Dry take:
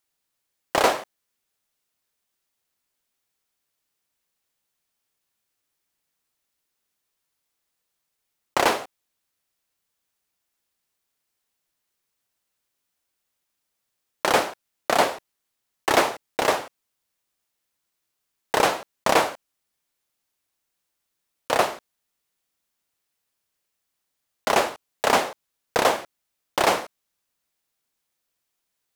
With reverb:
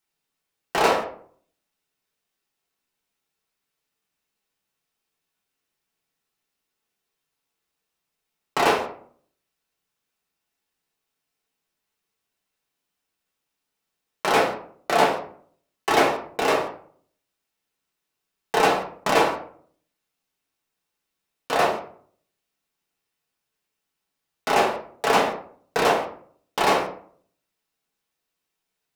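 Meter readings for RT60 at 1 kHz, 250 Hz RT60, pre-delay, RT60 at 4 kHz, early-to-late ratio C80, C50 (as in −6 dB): 0.50 s, 0.65 s, 3 ms, 0.30 s, 11.5 dB, 7.5 dB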